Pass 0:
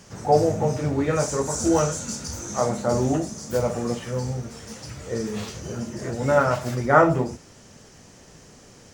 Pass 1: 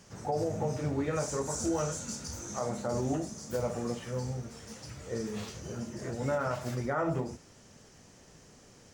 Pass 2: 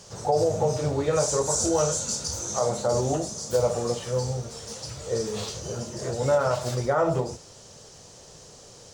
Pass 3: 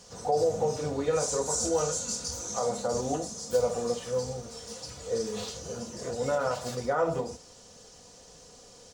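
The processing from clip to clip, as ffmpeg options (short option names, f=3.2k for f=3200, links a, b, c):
-af "alimiter=limit=-14.5dB:level=0:latency=1:release=78,volume=-7.5dB"
-af "equalizer=f=125:t=o:w=1:g=3,equalizer=f=250:t=o:w=1:g=-7,equalizer=f=500:t=o:w=1:g=7,equalizer=f=1k:t=o:w=1:g=3,equalizer=f=2k:t=o:w=1:g=-5,equalizer=f=4k:t=o:w=1:g=8,equalizer=f=8k:t=o:w=1:g=6,volume=4.5dB"
-af "aecho=1:1:4.1:0.53,volume=-5dB"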